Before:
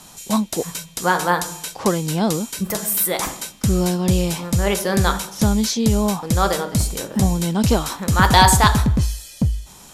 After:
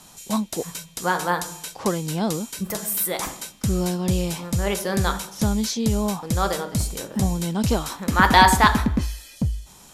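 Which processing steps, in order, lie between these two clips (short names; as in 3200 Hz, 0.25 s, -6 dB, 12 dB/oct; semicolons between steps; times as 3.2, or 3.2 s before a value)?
8.08–9.36 graphic EQ 125/250/1000/2000/8000 Hz -9/+8/+3/+6/-4 dB; gain -4.5 dB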